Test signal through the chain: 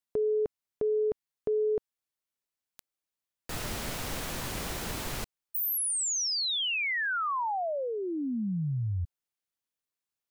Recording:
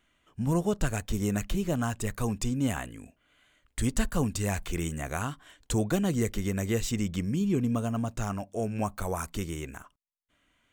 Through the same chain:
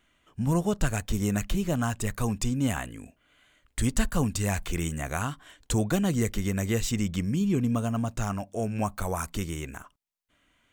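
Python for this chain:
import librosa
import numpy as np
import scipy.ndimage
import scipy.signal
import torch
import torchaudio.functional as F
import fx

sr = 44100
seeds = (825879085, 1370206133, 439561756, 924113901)

y = fx.dynamic_eq(x, sr, hz=400.0, q=1.3, threshold_db=-41.0, ratio=4.0, max_db=-3)
y = y * librosa.db_to_amplitude(2.5)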